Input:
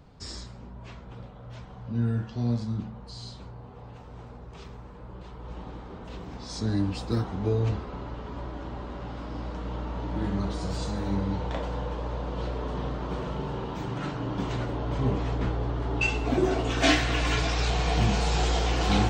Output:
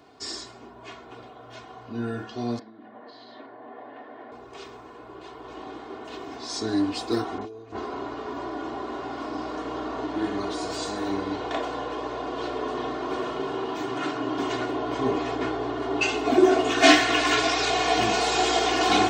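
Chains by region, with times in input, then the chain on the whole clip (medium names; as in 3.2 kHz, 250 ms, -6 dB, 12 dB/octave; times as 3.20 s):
2.59–4.32 s: compression 12:1, threshold -39 dBFS + cabinet simulation 240–3200 Hz, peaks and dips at 260 Hz +8 dB, 410 Hz -3 dB, 590 Hz +8 dB, 1.3 kHz -3 dB, 1.8 kHz +9 dB, 2.6 kHz -7 dB
7.38–10.06 s: compressor with a negative ratio -31 dBFS, ratio -0.5 + bands offset in time lows, highs 30 ms, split 2.7 kHz
whole clip: high-pass 270 Hz 12 dB/octave; comb 2.8 ms, depth 75%; trim +4.5 dB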